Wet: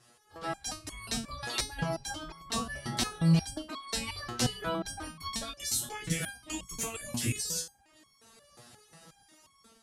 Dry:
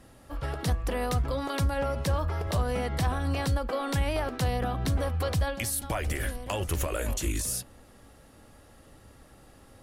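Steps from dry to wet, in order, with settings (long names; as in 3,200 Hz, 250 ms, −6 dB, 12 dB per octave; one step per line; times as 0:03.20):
reverb reduction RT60 0.59 s
gate on every frequency bin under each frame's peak −10 dB weak
high-pass filter 41 Hz
bass and treble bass +12 dB, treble +14 dB
automatic gain control gain up to 9 dB
high-frequency loss of the air 70 metres
step-sequenced resonator 5.6 Hz 120–1,100 Hz
level +6 dB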